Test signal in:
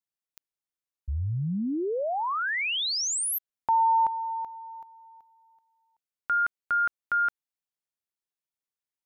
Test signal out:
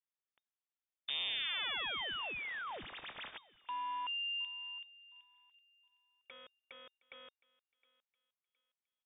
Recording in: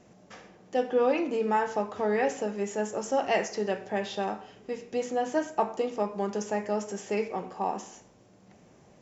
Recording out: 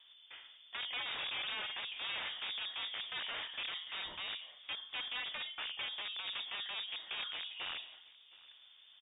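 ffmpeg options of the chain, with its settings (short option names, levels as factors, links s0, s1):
-filter_complex "[0:a]acompressor=threshold=0.0251:ratio=8:attack=7.3:release=21:knee=6:detection=rms,aeval=exprs='(mod(31.6*val(0)+1,2)-1)/31.6':c=same,asplit=2[s0][s1];[s1]adelay=715,lowpass=f=2900:p=1,volume=0.0891,asplit=2[s2][s3];[s3]adelay=715,lowpass=f=2900:p=1,volume=0.35,asplit=2[s4][s5];[s5]adelay=715,lowpass=f=2900:p=1,volume=0.35[s6];[s0][s2][s4][s6]amix=inputs=4:normalize=0,lowpass=f=3100:t=q:w=0.5098,lowpass=f=3100:t=q:w=0.6013,lowpass=f=3100:t=q:w=0.9,lowpass=f=3100:t=q:w=2.563,afreqshift=-3700,volume=0.596"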